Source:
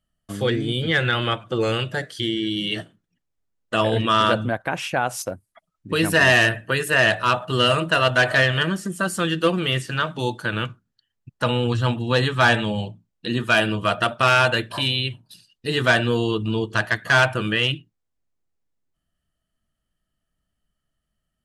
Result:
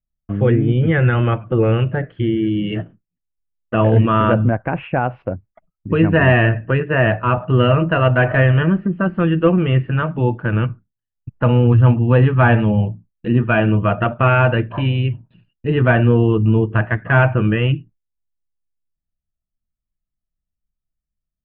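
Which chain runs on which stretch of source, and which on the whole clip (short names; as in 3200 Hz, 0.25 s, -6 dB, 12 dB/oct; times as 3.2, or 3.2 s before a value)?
6.8–7.38 expander -29 dBFS + HPF 45 Hz + high shelf 5300 Hz -7.5 dB
whole clip: gate with hold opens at -42 dBFS; elliptic low-pass 2700 Hz, stop band 60 dB; tilt -3.5 dB/oct; gain +2 dB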